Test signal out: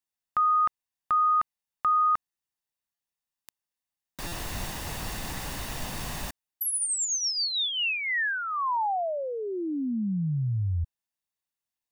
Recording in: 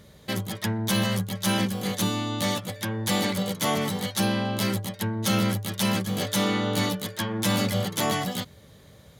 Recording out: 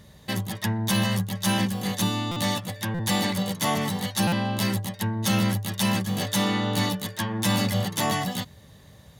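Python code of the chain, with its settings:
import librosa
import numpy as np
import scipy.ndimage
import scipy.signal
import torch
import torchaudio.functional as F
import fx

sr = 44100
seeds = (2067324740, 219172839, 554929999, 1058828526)

y = x + 0.34 * np.pad(x, (int(1.1 * sr / 1000.0), 0))[:len(x)]
y = fx.buffer_glitch(y, sr, at_s=(2.31, 2.94, 4.27), block=256, repeats=8)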